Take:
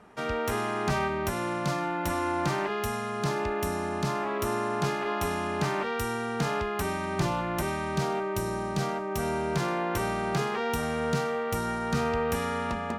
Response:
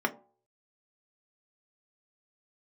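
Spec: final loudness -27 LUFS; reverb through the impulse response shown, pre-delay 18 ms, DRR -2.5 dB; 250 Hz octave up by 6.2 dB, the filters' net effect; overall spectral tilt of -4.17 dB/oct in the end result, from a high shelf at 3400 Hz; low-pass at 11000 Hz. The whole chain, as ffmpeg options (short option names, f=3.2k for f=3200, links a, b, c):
-filter_complex "[0:a]lowpass=11k,equalizer=f=250:t=o:g=8.5,highshelf=f=3.4k:g=-7.5,asplit=2[a][b];[1:a]atrim=start_sample=2205,adelay=18[c];[b][c]afir=irnorm=-1:irlink=0,volume=-7.5dB[d];[a][d]amix=inputs=2:normalize=0,volume=-4.5dB"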